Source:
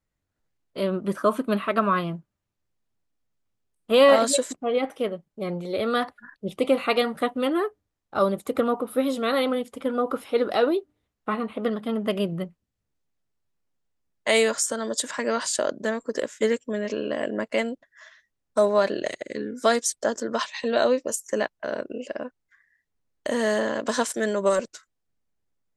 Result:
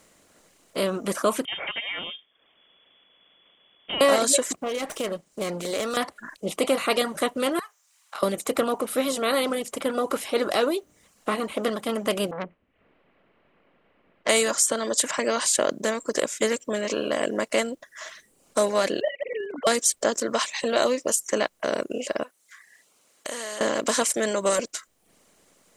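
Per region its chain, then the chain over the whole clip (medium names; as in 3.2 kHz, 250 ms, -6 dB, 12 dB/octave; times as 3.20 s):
1.45–4.01 s: compression 2:1, threshold -37 dBFS + frequency inversion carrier 3.4 kHz
4.57–5.97 s: treble shelf 3.6 kHz +7 dB + compression 4:1, threshold -28 dBFS + sliding maximum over 3 samples
7.59–8.23 s: steep high-pass 950 Hz + compression 10:1, threshold -39 dBFS
12.31–14.29 s: steep low-pass 2.7 kHz 48 dB/octave + transformer saturation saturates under 2 kHz
19.01–19.67 s: formants replaced by sine waves + band-stop 1.2 kHz, Q 8.4
22.23–23.61 s: high-pass 1.5 kHz 6 dB/octave + compression 2:1, threshold -46 dBFS
whole clip: spectral levelling over time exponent 0.6; reverb removal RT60 0.57 s; treble shelf 6.2 kHz +11 dB; trim -4 dB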